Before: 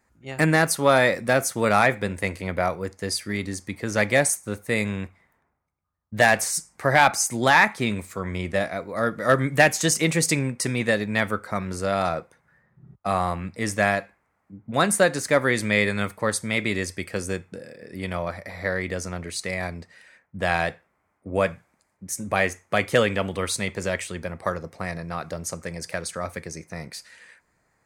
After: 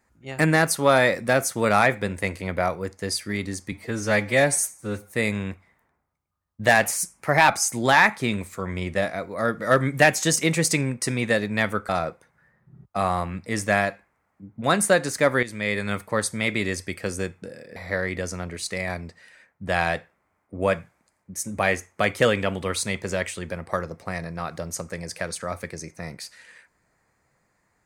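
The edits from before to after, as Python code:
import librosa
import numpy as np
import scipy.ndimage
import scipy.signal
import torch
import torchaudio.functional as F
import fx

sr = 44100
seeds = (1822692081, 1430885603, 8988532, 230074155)

y = fx.edit(x, sr, fx.stretch_span(start_s=3.72, length_s=0.94, factor=1.5),
    fx.speed_span(start_s=6.38, length_s=0.68, speed=1.08),
    fx.cut(start_s=11.47, length_s=0.52),
    fx.fade_in_from(start_s=15.53, length_s=0.58, floor_db=-13.0),
    fx.cut(start_s=17.86, length_s=0.63), tone=tone)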